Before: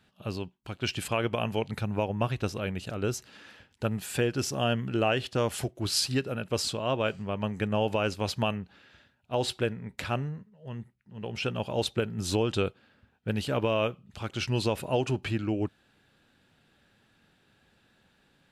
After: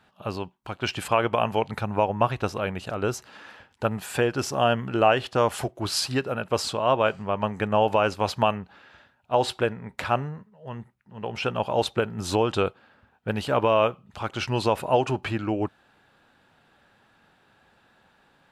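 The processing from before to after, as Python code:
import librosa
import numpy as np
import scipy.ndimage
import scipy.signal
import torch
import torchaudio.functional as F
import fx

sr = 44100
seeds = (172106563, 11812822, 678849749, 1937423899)

y = fx.peak_eq(x, sr, hz=940.0, db=11.0, octaves=1.8)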